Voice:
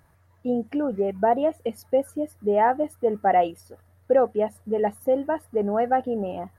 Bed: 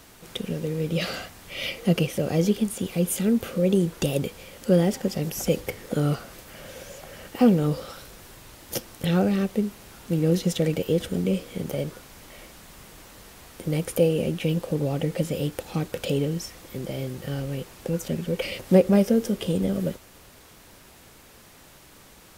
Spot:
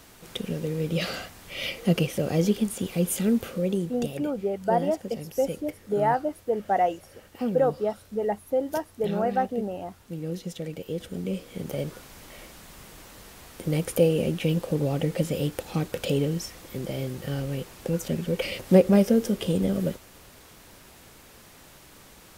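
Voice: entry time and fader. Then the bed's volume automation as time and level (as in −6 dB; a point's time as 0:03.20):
3.45 s, −3.5 dB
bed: 0:03.34 −1 dB
0:04.18 −11 dB
0:10.70 −11 dB
0:12.02 0 dB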